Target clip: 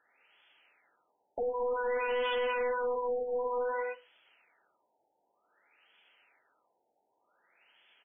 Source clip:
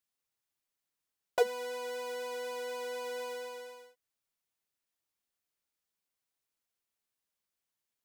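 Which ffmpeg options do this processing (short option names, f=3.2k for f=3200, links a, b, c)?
-filter_complex "[0:a]asuperstop=centerf=1100:order=8:qfactor=7.5,asplit=2[a][b];[b]highpass=f=720:p=1,volume=39dB,asoftclip=type=tanh:threshold=-15dB[c];[a][c]amix=inputs=2:normalize=0,lowpass=f=3.9k:p=1,volume=-6dB,bass=f=250:g=-10,treble=f=4k:g=2,asplit=2[d][e];[e]aecho=0:1:61|122|183:0.106|0.0328|0.0102[f];[d][f]amix=inputs=2:normalize=0,flanger=delay=2.2:depth=6.1:regen=-74:speed=0.7:shape=triangular,volume=25dB,asoftclip=hard,volume=-25dB,equalizer=f=2.9k:t=o:w=0.73:g=6,alimiter=level_in=3dB:limit=-24dB:level=0:latency=1:release=27,volume=-3dB,afftfilt=real='re*lt(b*sr/1024,900*pow(3500/900,0.5+0.5*sin(2*PI*0.54*pts/sr)))':imag='im*lt(b*sr/1024,900*pow(3500/900,0.5+0.5*sin(2*PI*0.54*pts/sr)))':win_size=1024:overlap=0.75,volume=1dB"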